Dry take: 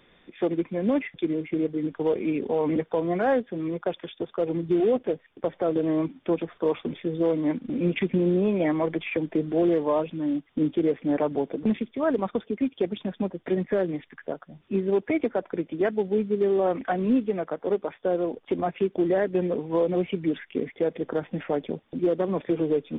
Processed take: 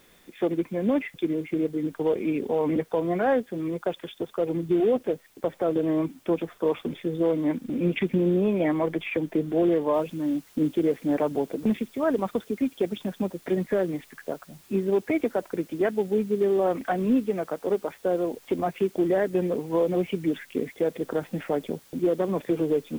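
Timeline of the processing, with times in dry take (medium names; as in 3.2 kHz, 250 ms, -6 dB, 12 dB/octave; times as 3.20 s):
9.94 s: noise floor step -62 dB -56 dB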